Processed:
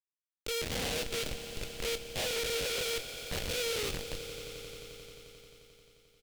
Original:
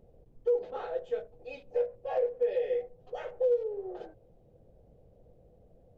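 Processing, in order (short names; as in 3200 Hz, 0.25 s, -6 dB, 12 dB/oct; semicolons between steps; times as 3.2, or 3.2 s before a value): stepped spectrum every 0.1 s; speed mistake 25 fps video run at 24 fps; inverse Chebyshev high-pass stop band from 170 Hz, stop band 50 dB; transient shaper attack -8 dB, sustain +1 dB; Schmitt trigger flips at -40 dBFS; resonant high shelf 2100 Hz +10 dB, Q 1.5; doubler 24 ms -11 dB; on a send: swelling echo 88 ms, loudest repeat 5, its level -16.5 dB; on the sum: Doppler distortion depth 0.58 ms; gain +3 dB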